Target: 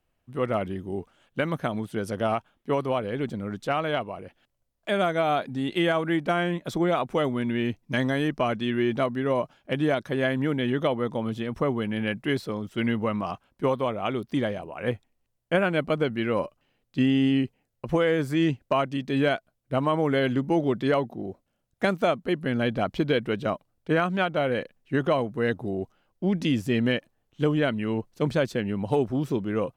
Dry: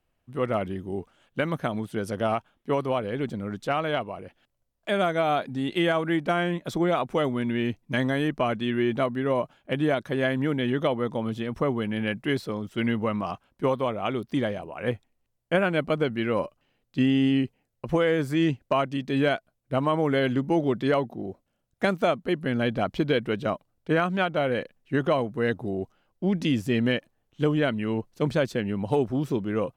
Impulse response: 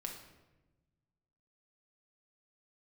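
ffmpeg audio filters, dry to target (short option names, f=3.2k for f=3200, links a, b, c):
-filter_complex "[0:a]asettb=1/sr,asplit=3[a][b][c];[a]atrim=end=7.834[d];[b]atrim=start=7.83:end=10.07,asetpts=PTS-STARTPTS,afade=t=in:d=0.004:c=qsin,afade=t=out:st=2.236:d=0.004:c=qsin,equalizer=f=5.3k:w=3.2:g=6[e];[c]atrim=start=10.066[f];[d][e]acrossfade=d=0.004:c1=hsin:c2=qsin[g];[g][f]acrossfade=d=0.004:c1=qsin:c2=hsin"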